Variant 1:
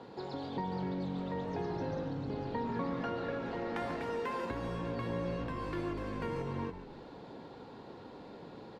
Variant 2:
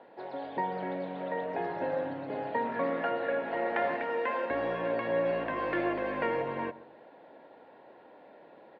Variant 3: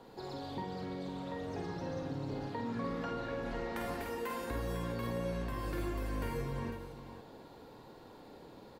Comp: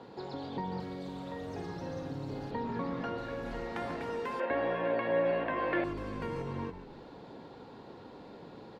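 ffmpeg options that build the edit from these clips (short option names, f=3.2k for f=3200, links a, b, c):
-filter_complex "[2:a]asplit=2[a][b];[0:a]asplit=4[c][d][e][f];[c]atrim=end=0.802[g];[a]atrim=start=0.798:end=2.512[h];[d]atrim=start=2.508:end=3.182[i];[b]atrim=start=3.178:end=3.762[j];[e]atrim=start=3.758:end=4.402[k];[1:a]atrim=start=4.398:end=5.842[l];[f]atrim=start=5.838[m];[g][h]acrossfade=d=0.004:c1=hsin:c2=hsin[n];[n][i]acrossfade=d=0.004:c1=hsin:c2=hsin[o];[o][j]acrossfade=d=0.004:c1=hsin:c2=hsin[p];[p][k]acrossfade=d=0.004:c1=hsin:c2=hsin[q];[q][l]acrossfade=d=0.004:c1=hsin:c2=hsin[r];[r][m]acrossfade=d=0.004:c1=hsin:c2=hsin"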